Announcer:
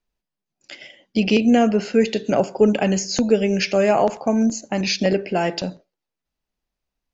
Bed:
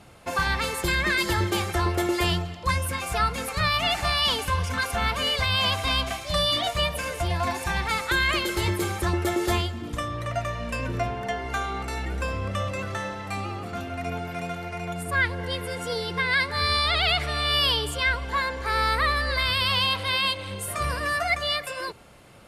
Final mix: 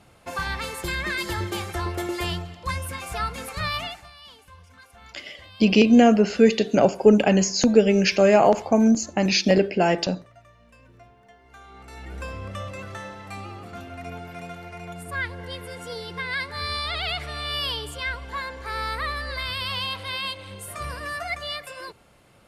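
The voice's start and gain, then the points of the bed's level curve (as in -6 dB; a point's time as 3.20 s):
4.45 s, +1.0 dB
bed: 3.79 s -4 dB
4.10 s -23.5 dB
11.39 s -23.5 dB
12.18 s -5.5 dB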